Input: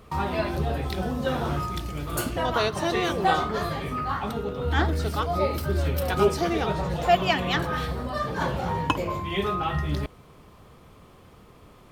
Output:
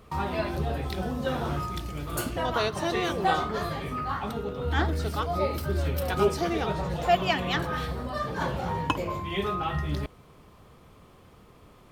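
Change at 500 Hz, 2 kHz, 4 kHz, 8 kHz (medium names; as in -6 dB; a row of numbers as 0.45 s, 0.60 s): -2.5 dB, -2.5 dB, -2.5 dB, -2.5 dB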